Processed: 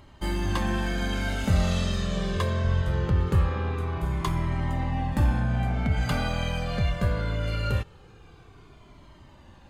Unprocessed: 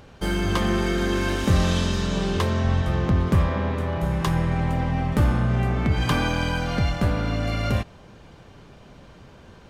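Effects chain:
notch filter 5,600 Hz, Q 11
flanger whose copies keep moving one way falling 0.22 Hz

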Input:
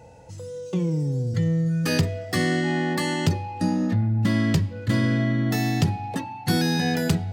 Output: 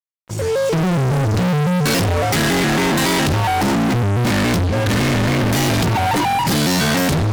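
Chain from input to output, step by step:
fade in at the beginning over 0.91 s
fuzz pedal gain 42 dB, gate −51 dBFS
pitch modulation by a square or saw wave square 3.6 Hz, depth 160 cents
level −2.5 dB

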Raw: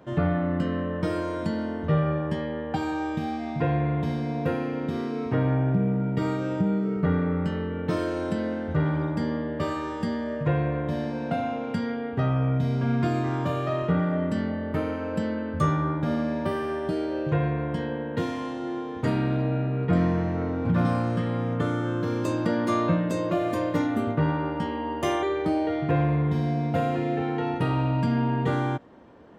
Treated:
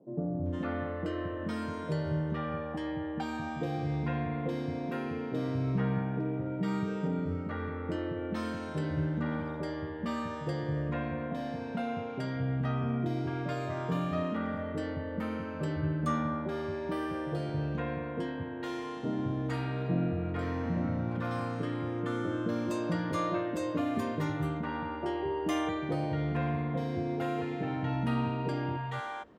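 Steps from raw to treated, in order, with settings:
three-band delay without the direct sound mids, lows, highs 220/460 ms, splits 150/610 Hz
level −5 dB

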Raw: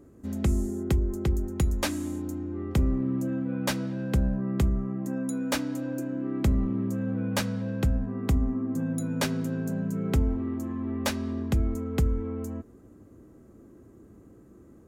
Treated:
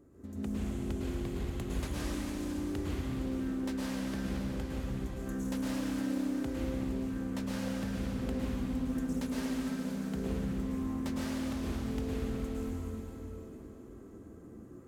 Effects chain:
downward compressor, threshold −34 dBFS, peak gain reduction 14.5 dB
convolution reverb RT60 4.1 s, pre-delay 98 ms, DRR −9 dB
highs frequency-modulated by the lows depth 0.32 ms
level −7.5 dB

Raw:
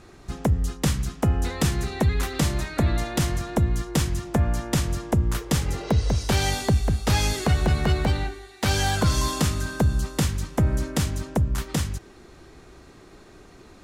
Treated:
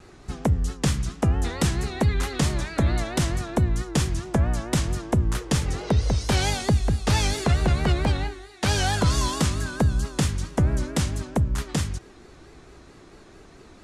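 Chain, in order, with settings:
low-pass filter 11,000 Hz 24 dB per octave
pitch vibrato 4.5 Hz 98 cents

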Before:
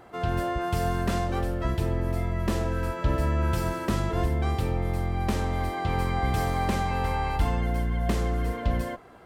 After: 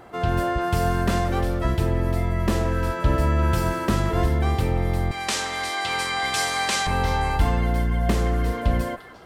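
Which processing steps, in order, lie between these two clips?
0:05.11–0:06.87: meter weighting curve ITU-R 468
echo through a band-pass that steps 174 ms, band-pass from 1,600 Hz, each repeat 1.4 octaves, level −8.5 dB
level +4.5 dB

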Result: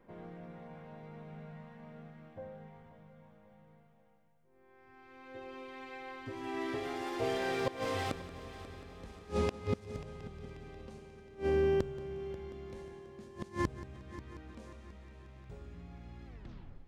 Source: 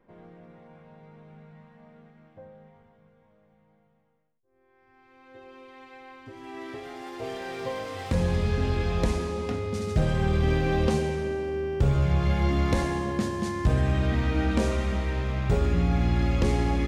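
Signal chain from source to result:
turntable brake at the end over 0.62 s
gate with flip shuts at −21 dBFS, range −27 dB
echo machine with several playback heads 179 ms, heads first and third, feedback 62%, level −16 dB
level +1 dB

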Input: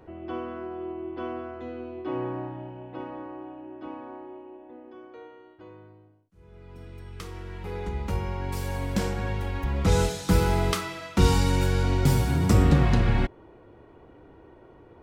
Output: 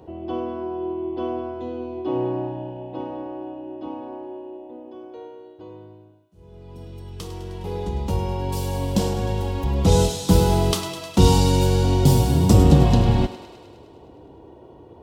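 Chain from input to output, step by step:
high-pass filter 50 Hz
flat-topped bell 1,700 Hz −11.5 dB 1.2 octaves
on a send: feedback echo with a high-pass in the loop 103 ms, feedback 71%, level −12 dB
on the sum: level +6 dB

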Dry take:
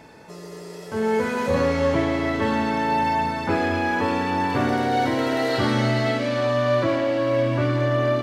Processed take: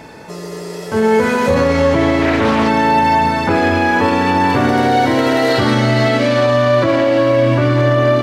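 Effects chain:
boost into a limiter +14.5 dB
0:02.22–0:02.68: highs frequency-modulated by the lows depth 0.33 ms
level −4 dB

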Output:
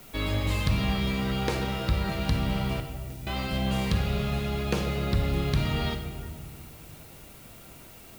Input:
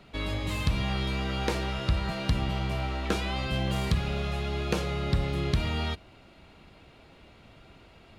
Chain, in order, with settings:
parametric band 82 Hz −8 dB 0.28 octaves
speech leveller 2 s
0:02.80–0:03.27: guitar amp tone stack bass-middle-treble 10-0-1
on a send at −5.5 dB: convolution reverb RT60 1.9 s, pre-delay 19 ms
on the sum: background noise blue −52 dBFS

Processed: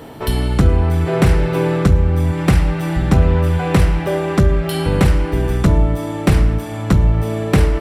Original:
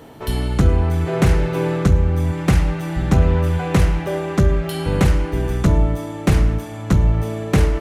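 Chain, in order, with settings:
notch filter 6,500 Hz, Q 7.1
in parallel at 0 dB: downward compressor, threshold −23 dBFS, peak gain reduction 13.5 dB

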